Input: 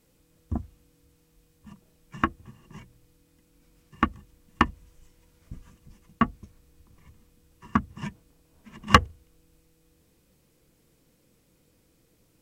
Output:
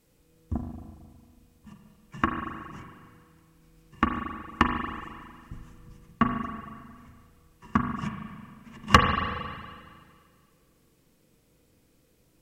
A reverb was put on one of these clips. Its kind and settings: spring tank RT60 1.9 s, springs 37/45 ms, chirp 40 ms, DRR 3.5 dB; gain -1 dB

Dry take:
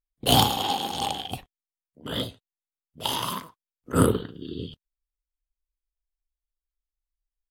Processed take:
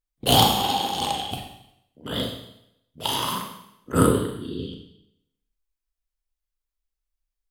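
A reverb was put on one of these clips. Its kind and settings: Schroeder reverb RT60 0.78 s, combs from 30 ms, DRR 3 dB; gain +1 dB

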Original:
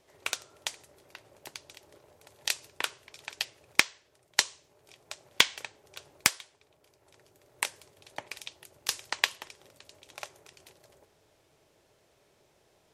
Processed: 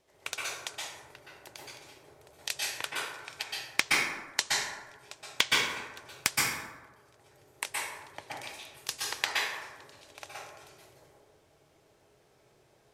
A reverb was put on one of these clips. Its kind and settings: plate-style reverb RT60 1.2 s, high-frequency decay 0.45×, pre-delay 0.11 s, DRR -5.5 dB; gain -5 dB

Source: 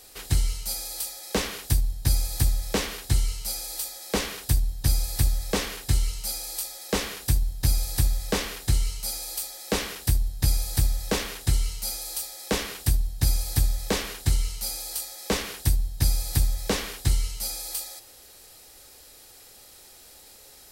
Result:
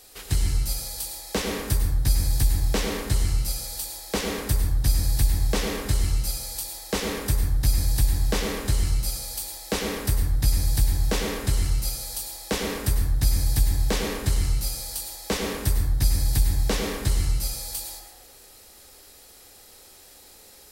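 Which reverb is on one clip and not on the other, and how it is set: plate-style reverb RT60 1.2 s, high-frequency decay 0.3×, pre-delay 85 ms, DRR 2 dB; gain -1 dB

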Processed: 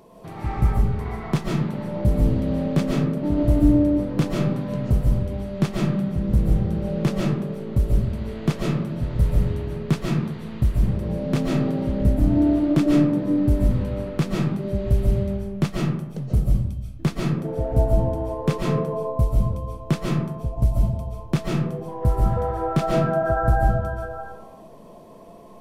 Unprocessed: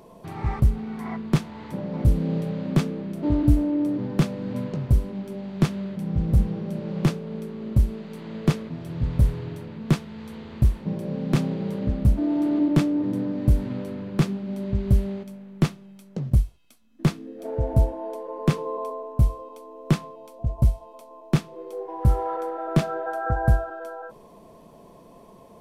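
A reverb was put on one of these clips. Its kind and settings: digital reverb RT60 0.96 s, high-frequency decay 0.4×, pre-delay 0.1 s, DRR -3 dB; gain -1.5 dB

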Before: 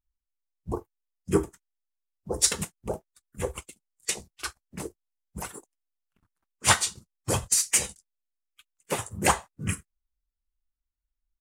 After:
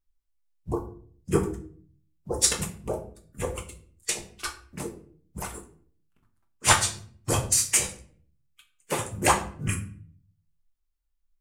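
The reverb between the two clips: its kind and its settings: shoebox room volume 55 m³, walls mixed, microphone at 0.42 m

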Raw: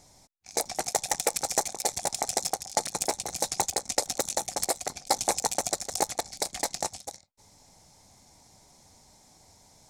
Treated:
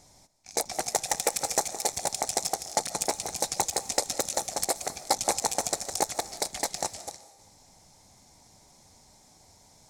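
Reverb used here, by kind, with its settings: digital reverb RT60 1.1 s, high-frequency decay 1×, pre-delay 0.105 s, DRR 14 dB

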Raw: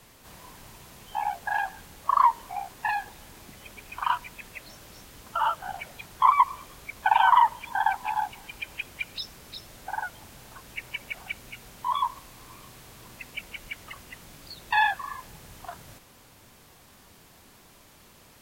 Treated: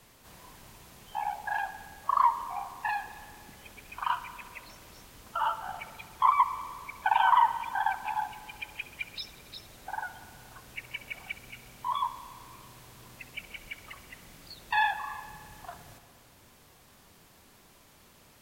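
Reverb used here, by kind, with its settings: spring tank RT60 2 s, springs 57 ms, chirp 40 ms, DRR 11.5 dB; gain -4 dB

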